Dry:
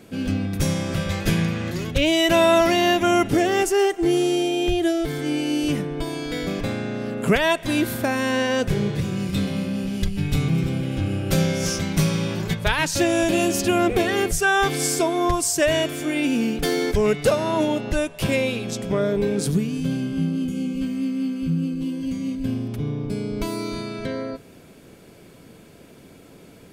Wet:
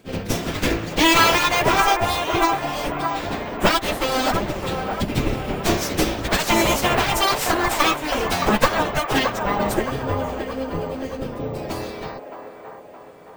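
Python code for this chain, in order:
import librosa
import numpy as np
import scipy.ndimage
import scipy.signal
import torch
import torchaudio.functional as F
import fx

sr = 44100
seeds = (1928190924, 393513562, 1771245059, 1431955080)

p1 = fx.hum_notches(x, sr, base_hz=50, count=7)
p2 = fx.cheby_harmonics(p1, sr, harmonics=(3, 4), levels_db=(-8, -12), full_scale_db=-6.5)
p3 = np.clip(p2, -10.0 ** (-16.5 / 20.0), 10.0 ** (-16.5 / 20.0))
p4 = p2 + (p3 * 10.0 ** (-6.0 / 20.0))
p5 = fx.stretch_vocoder_free(p4, sr, factor=0.5)
p6 = p5 + fx.echo_wet_bandpass(p5, sr, ms=619, feedback_pct=52, hz=880.0, wet_db=-5, dry=0)
p7 = np.repeat(scipy.signal.resample_poly(p6, 1, 2), 2)[:len(p6)]
y = p7 * 10.0 ** (8.5 / 20.0)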